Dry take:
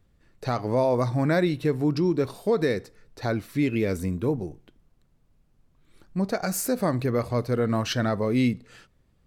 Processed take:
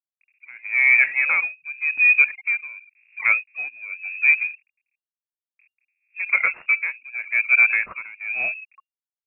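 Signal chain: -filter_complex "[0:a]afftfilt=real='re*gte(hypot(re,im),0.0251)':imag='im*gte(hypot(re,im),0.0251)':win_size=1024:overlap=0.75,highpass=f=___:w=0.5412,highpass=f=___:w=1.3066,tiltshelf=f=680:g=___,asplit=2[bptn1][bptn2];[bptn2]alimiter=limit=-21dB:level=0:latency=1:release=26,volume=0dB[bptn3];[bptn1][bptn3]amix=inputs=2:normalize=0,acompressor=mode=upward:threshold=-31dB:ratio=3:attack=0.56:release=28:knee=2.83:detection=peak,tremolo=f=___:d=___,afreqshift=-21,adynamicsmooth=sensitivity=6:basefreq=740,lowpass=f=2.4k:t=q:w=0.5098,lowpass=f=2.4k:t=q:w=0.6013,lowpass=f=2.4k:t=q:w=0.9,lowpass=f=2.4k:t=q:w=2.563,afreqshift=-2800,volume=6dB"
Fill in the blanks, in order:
400, 400, 6, 0.92, 0.93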